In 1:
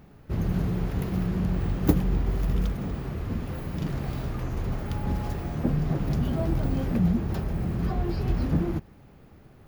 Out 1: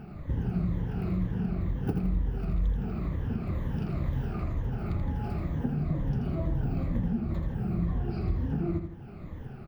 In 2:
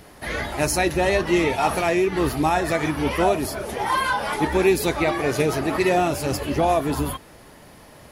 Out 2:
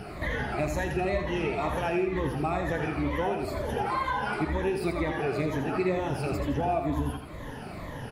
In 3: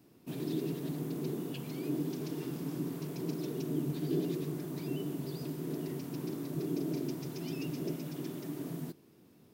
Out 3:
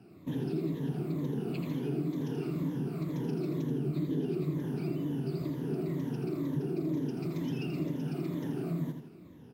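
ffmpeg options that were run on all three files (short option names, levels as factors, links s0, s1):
-filter_complex "[0:a]afftfilt=real='re*pow(10,13/40*sin(2*PI*(1.1*log(max(b,1)*sr/1024/100)/log(2)-(-2.1)*(pts-256)/sr)))':imag='im*pow(10,13/40*sin(2*PI*(1.1*log(max(b,1)*sr/1024/100)/log(2)-(-2.1)*(pts-256)/sr)))':win_size=1024:overlap=0.75,bass=f=250:g=5,treble=f=4000:g=-12,acompressor=threshold=0.0158:ratio=3,asplit=2[s0][s1];[s1]aecho=0:1:82|164|246|328|410:0.447|0.188|0.0788|0.0331|0.0139[s2];[s0][s2]amix=inputs=2:normalize=0,volume=1.58"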